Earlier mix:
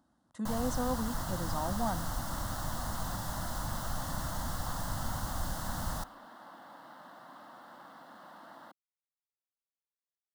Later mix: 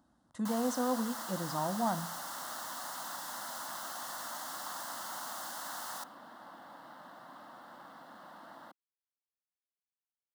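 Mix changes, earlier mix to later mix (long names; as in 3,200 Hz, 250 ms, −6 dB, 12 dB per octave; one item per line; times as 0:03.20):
speech: send +10.0 dB
first sound: add high-pass filter 830 Hz 12 dB per octave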